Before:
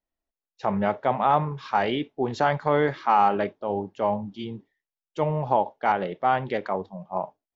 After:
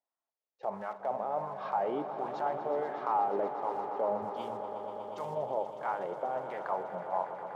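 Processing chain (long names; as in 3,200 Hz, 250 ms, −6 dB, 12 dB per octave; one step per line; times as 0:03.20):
one scale factor per block 5 bits
0:04.22–0:05.35: bass and treble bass +8 dB, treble +13 dB
in parallel at +3 dB: downward compressor, threshold −30 dBFS, peak gain reduction 14 dB
on the sum: brickwall limiter −14 dBFS, peak gain reduction 8.5 dB
LFO wah 1.4 Hz 490–1,100 Hz, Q 2.3
on a send: echo that builds up and dies away 121 ms, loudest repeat 5, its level −13.5 dB
on the sum: level −4 dB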